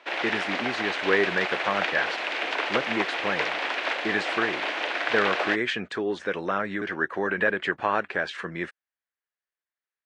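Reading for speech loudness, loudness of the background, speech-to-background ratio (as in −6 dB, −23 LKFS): −28.0 LKFS, −28.0 LKFS, 0.0 dB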